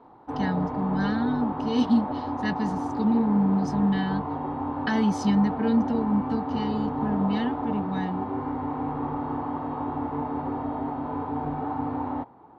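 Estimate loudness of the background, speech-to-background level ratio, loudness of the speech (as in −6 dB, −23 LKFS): −30.5 LKFS, 3.5 dB, −27.0 LKFS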